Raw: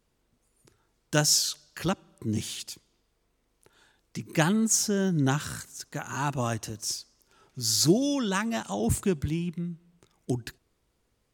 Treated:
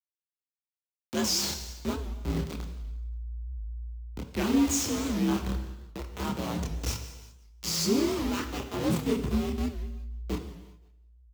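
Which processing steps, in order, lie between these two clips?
hold until the input has moved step −23.5 dBFS
graphic EQ with 15 bands 630 Hz −5 dB, 1,600 Hz −7 dB, 10,000 Hz −7 dB
in parallel at +1 dB: brickwall limiter −21 dBFS, peak gain reduction 11 dB
on the sum: frequency shifter +58 Hz
repeating echo 176 ms, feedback 39%, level −19 dB
multi-voice chorus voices 4, 0.41 Hz, delay 28 ms, depth 3 ms
pitch vibrato 4 Hz 7.8 cents
reverb whose tail is shaped and stops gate 420 ms falling, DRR 6.5 dB
wow of a warped record 78 rpm, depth 160 cents
level −4.5 dB

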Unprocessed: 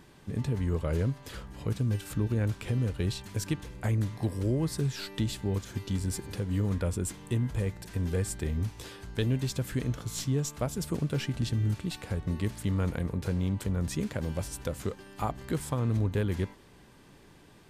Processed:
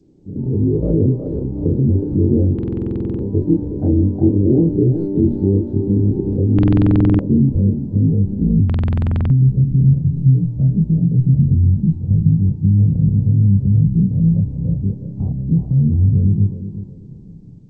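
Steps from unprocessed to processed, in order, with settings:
every overlapping window played backwards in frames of 61 ms
treble cut that deepens with the level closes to 1,400 Hz, closed at −26.5 dBFS
flat-topped bell 1,900 Hz −12.5 dB
hum removal 118.6 Hz, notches 9
brickwall limiter −29.5 dBFS, peak gain reduction 9.5 dB
automatic gain control gain up to 16 dB
low-pass filter sweep 340 Hz → 160 Hz, 0:06.29–0:09.61
feedback echo with a high-pass in the loop 367 ms, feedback 44%, high-pass 300 Hz, level −5 dB
buffer that repeats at 0:02.54/0:06.54/0:08.65, samples 2,048, times 13
level +3.5 dB
G.722 64 kbit/s 16,000 Hz

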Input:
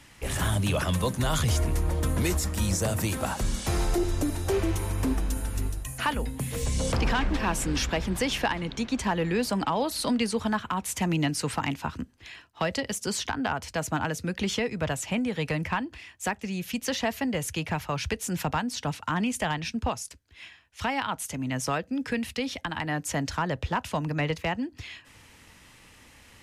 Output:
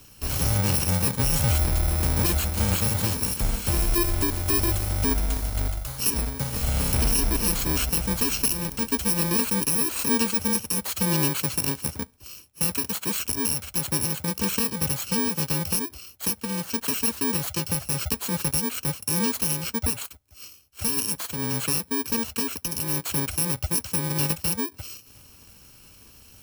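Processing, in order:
samples in bit-reversed order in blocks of 64 samples
level +3 dB

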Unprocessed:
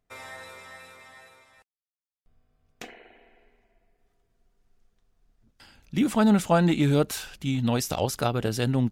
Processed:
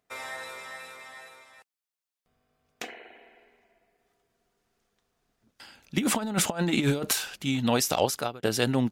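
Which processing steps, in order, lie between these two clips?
high-pass filter 350 Hz 6 dB per octave
0:05.97–0:07.13: compressor whose output falls as the input rises −29 dBFS, ratio −0.5
0:08.01–0:08.43: fade out
level +4.5 dB

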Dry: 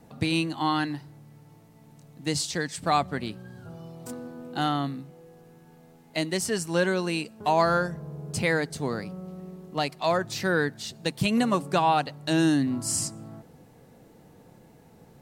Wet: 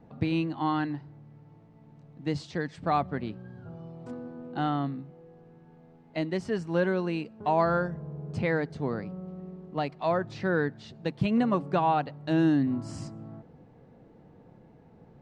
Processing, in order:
head-to-tape spacing loss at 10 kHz 32 dB

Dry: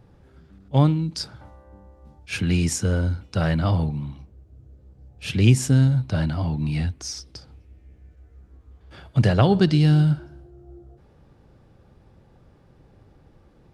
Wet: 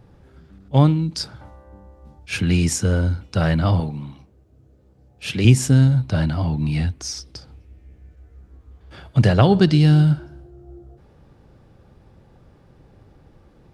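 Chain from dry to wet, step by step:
0:03.80–0:05.45: high-pass filter 220 Hz 6 dB per octave
level +3 dB

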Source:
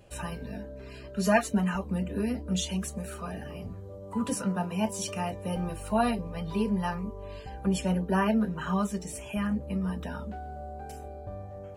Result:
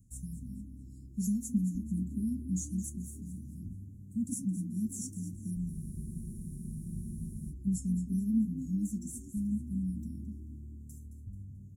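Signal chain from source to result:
Chebyshev band-stop filter 250–6,600 Hz, order 4
echo with shifted repeats 218 ms, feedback 40%, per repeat +38 Hz, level −13 dB
frozen spectrum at 0:05.74, 1.77 s
level −2.5 dB

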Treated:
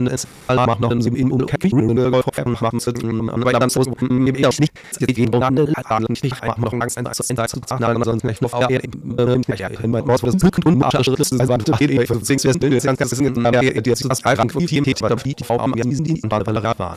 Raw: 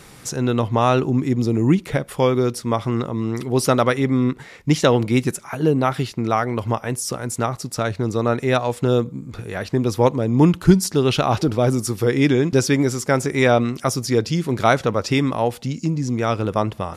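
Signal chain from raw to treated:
slices reordered back to front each 82 ms, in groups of 6
harmonic generator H 5 −17 dB, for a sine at −1.5 dBFS
level −1 dB

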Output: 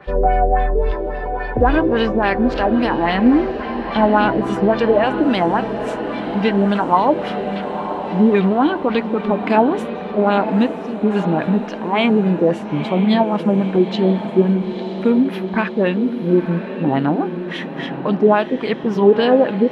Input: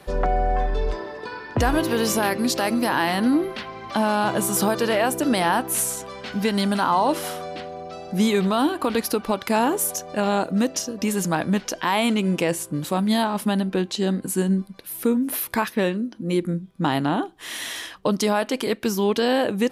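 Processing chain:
auto-filter low-pass sine 3.6 Hz 400–3,300 Hz
harmonic and percussive parts rebalanced percussive −7 dB
feedback delay with all-pass diffusion 948 ms, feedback 61%, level −10 dB
level +5 dB

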